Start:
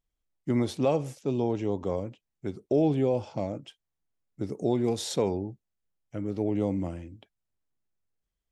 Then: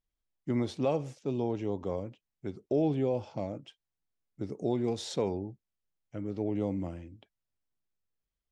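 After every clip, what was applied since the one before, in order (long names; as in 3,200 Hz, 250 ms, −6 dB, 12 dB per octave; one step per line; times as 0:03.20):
low-pass filter 6,800 Hz 12 dB per octave
level −4 dB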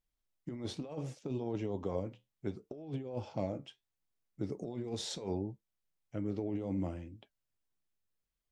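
compressor whose output falls as the input rises −33 dBFS, ratio −0.5
flanger 0.69 Hz, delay 5.4 ms, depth 7.6 ms, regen −68%
level +1 dB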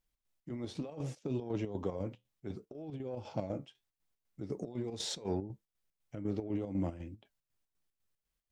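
square-wave tremolo 4 Hz, depth 60%, duty 60%
in parallel at −8 dB: soft clipping −35 dBFS, distortion −11 dB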